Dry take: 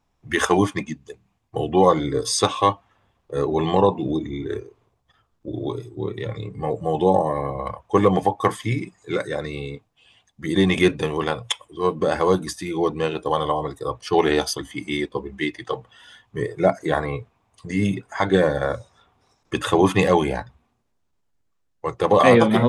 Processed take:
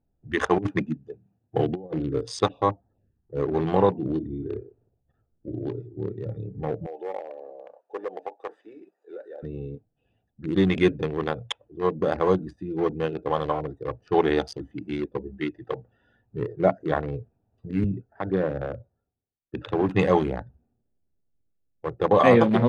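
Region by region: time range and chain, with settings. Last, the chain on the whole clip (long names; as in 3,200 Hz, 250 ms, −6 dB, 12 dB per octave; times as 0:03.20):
0:00.58–0:01.93: high-pass filter 90 Hz 24 dB per octave + compressor whose output falls as the input rises −22 dBFS, ratio −0.5
0:02.48–0:03.40: low-pass filter 7,300 Hz + parametric band 1,400 Hz −6.5 dB 0.25 octaves + phaser swept by the level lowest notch 440 Hz, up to 2,700 Hz, full sweep at −25 dBFS
0:06.86–0:09.43: variable-slope delta modulation 64 kbit/s + high-pass filter 430 Hz 24 dB per octave + downward compressor 1.5 to 1, threshold −37 dBFS
0:17.84–0:19.89: downward compressor 2.5 to 1, threshold −19 dBFS + high-frequency loss of the air 240 metres + multiband upward and downward expander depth 100%
whole clip: adaptive Wiener filter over 41 samples; Bessel low-pass filter 7,900 Hz; high-shelf EQ 5,100 Hz −12 dB; level −2 dB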